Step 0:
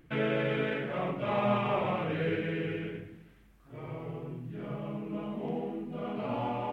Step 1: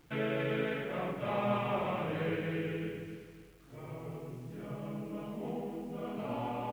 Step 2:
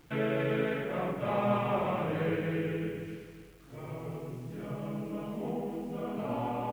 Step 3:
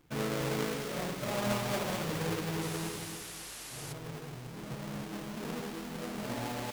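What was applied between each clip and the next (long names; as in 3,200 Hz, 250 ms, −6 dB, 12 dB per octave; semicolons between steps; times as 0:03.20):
bit-depth reduction 10 bits, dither none; repeating echo 270 ms, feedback 34%, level −9 dB; level −4 dB
dynamic equaliser 3,200 Hz, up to −4 dB, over −54 dBFS, Q 0.9; level +3.5 dB
each half-wave held at its own peak; delay with a high-pass on its return 214 ms, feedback 56%, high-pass 2,200 Hz, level −4.5 dB; sound drawn into the spectrogram noise, 0:02.61–0:03.93, 230–12,000 Hz −38 dBFS; level −7.5 dB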